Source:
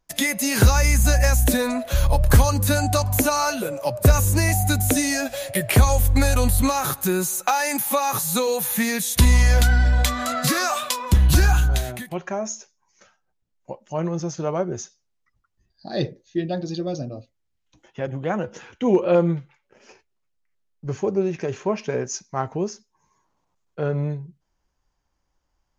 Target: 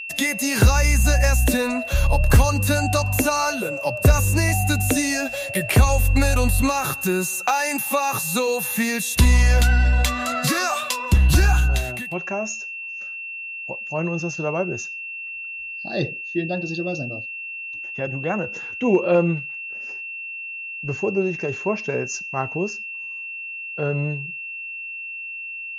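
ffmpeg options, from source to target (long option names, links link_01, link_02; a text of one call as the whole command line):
ffmpeg -i in.wav -af "aeval=exprs='val(0)+0.0316*sin(2*PI*2700*n/s)':channel_layout=same,highshelf=frequency=12000:gain=-5" out.wav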